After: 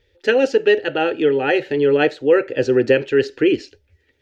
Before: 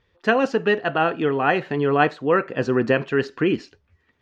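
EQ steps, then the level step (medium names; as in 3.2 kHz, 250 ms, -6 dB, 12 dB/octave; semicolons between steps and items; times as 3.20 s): Butterworth band-stop 690 Hz, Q 5.8; static phaser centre 450 Hz, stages 4; +6.5 dB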